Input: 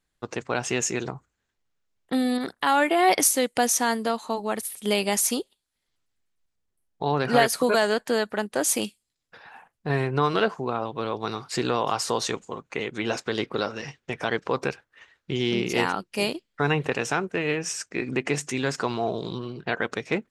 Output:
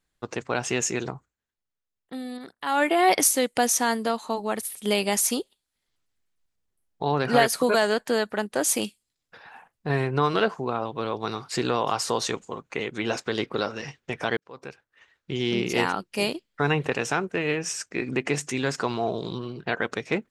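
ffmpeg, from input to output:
-filter_complex "[0:a]asplit=4[a][b][c][d];[a]atrim=end=1.35,asetpts=PTS-STARTPTS,afade=t=out:st=1.12:d=0.23:silence=0.281838[e];[b]atrim=start=1.35:end=2.61,asetpts=PTS-STARTPTS,volume=-11dB[f];[c]atrim=start=2.61:end=14.37,asetpts=PTS-STARTPTS,afade=t=in:d=0.23:silence=0.281838,afade=t=out:st=11.756:d=0.004:c=hsin[g];[d]atrim=start=14.37,asetpts=PTS-STARTPTS,afade=t=in:d=1.22[h];[e][f][g][h]concat=n=4:v=0:a=1"

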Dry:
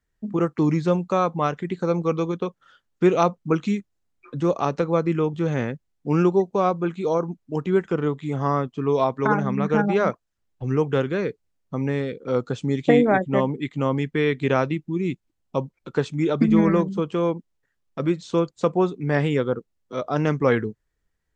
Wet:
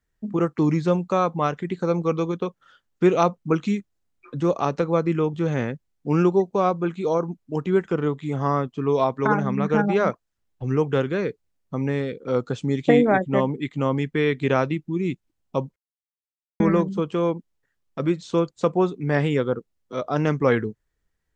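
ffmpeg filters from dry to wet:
-filter_complex "[0:a]asplit=3[a][b][c];[a]atrim=end=15.76,asetpts=PTS-STARTPTS,afade=t=out:st=15.756:d=0.004:c=hsin[d];[b]atrim=start=15.76:end=16.6,asetpts=PTS-STARTPTS,volume=0[e];[c]atrim=start=16.6,asetpts=PTS-STARTPTS,afade=t=in:d=0.004:c=hsin[f];[d][e][f]concat=n=3:v=0:a=1"

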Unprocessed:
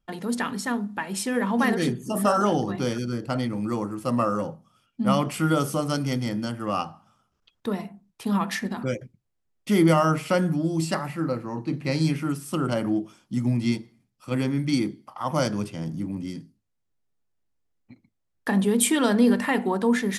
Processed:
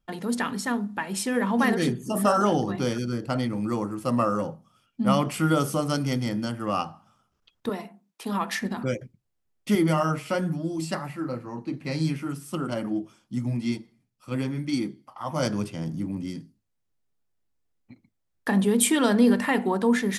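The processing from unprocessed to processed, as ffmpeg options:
-filter_complex "[0:a]asettb=1/sr,asplit=3[a][b][c];[a]atrim=end=7.694[d];[b]atrim=start=7.69:end=8.61,asetpts=PTS-STARTPTS,afade=t=in:d=0.004:c=qsin,afade=t=out:st=0.916:d=0.004:c=qsin,highpass=270[e];[c]atrim=start=8.606[f];[d][e]acrossfade=d=0.004:c1=hsin:c2=qsin[g];[g][f]acrossfade=d=0.004:c1=qsin:c2=hsin,asettb=1/sr,asplit=3[h][i][j];[h]atrim=end=9.754[k];[i]atrim=start=9.75:end=15.43,asetpts=PTS-STARTPTS,afade=t=in:d=0.004:c=qsin,afade=t=out:st=5.676:d=0.004:c=qsin,flanger=delay=2.7:depth=7:regen=-44:speed=1:shape=triangular[l];[j]atrim=start=15.426[m];[k][l]acrossfade=d=0.004:c1=hsin:c2=qsin[n];[n][m]acrossfade=d=0.004:c1=qsin:c2=hsin"

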